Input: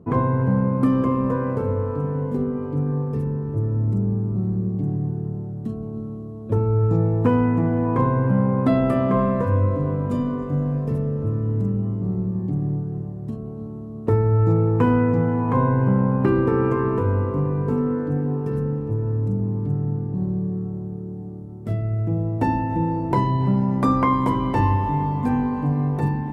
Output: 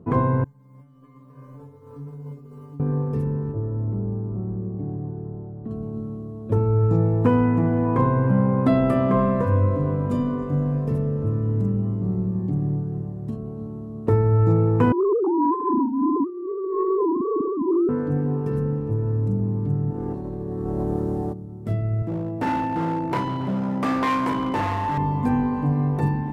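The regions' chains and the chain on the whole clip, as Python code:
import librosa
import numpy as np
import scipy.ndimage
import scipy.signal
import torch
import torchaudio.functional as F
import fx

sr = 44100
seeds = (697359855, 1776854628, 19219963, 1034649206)

y = fx.chain(x, sr, fx.over_compress(threshold_db=-26.0, ratio=-0.5),
    fx.quant_companded(bits=8),
    fx.stiff_resonator(f0_hz=140.0, decay_s=0.58, stiffness=0.002), at=(0.44, 2.8))
y = fx.chain(y, sr, fx.lowpass(hz=1300.0, slope=12),
    fx.peak_eq(hz=160.0, db=-7.5, octaves=1.3), at=(3.52, 5.71))
y = fx.chain(y, sr, fx.sine_speech(),
    fx.steep_lowpass(hz=1200.0, slope=96),
    fx.over_compress(threshold_db=-21.0, ratio=-0.5), at=(14.92, 17.89))
y = fx.spec_clip(y, sr, under_db=18, at=(19.9, 21.32), fade=0.02)
y = fx.over_compress(y, sr, threshold_db=-31.0, ratio=-1.0, at=(19.9, 21.32), fade=0.02)
y = fx.chain(y, sr, fx.doubler(ms=42.0, db=-10),
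    fx.clip_hard(threshold_db=-18.0),
    fx.highpass(hz=210.0, slope=6), at=(22.02, 24.98))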